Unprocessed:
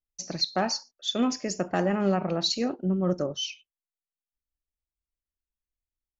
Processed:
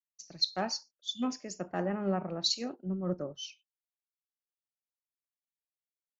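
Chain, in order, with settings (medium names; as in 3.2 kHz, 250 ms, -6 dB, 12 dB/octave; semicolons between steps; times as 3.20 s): spectral selection erased 1.00–1.23 s, 300–2800 Hz; three bands expanded up and down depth 100%; trim -8.5 dB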